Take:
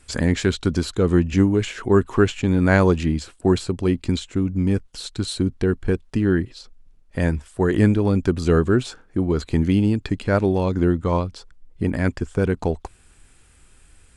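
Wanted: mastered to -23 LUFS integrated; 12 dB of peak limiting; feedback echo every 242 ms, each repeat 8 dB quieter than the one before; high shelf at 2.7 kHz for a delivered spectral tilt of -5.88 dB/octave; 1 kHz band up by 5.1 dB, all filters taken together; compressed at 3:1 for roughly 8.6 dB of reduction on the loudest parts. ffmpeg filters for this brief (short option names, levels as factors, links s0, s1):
-af "equalizer=f=1000:t=o:g=7,highshelf=f=2700:g=-4,acompressor=threshold=0.0794:ratio=3,alimiter=limit=0.0841:level=0:latency=1,aecho=1:1:242|484|726|968|1210:0.398|0.159|0.0637|0.0255|0.0102,volume=2.66"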